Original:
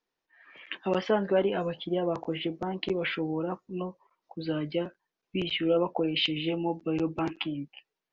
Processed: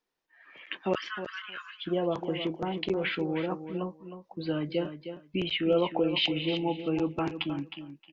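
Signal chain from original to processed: 0.95–1.86 s: steep high-pass 1.1 kHz 96 dB/octave; feedback delay 312 ms, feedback 16%, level -10 dB

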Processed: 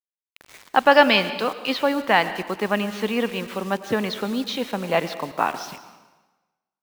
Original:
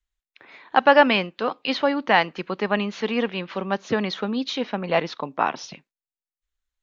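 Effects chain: 0.91–1.48 s: peaking EQ 5.1 kHz +9 dB 1.4 oct; bit crusher 7-bit; plate-style reverb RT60 1.2 s, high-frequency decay 0.9×, pre-delay 90 ms, DRR 12 dB

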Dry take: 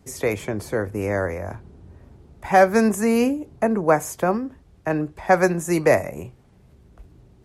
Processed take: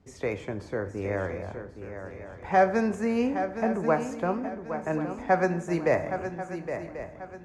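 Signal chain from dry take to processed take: distance through air 110 m; shuffle delay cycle 1088 ms, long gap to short 3:1, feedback 33%, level -9.5 dB; plate-style reverb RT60 0.78 s, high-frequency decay 0.85×, DRR 10.5 dB; trim -7 dB

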